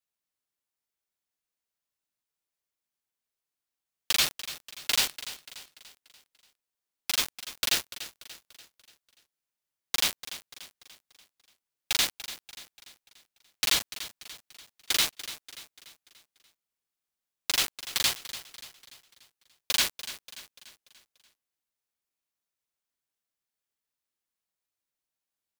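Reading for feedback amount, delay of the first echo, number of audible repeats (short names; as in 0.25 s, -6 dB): 48%, 0.291 s, 4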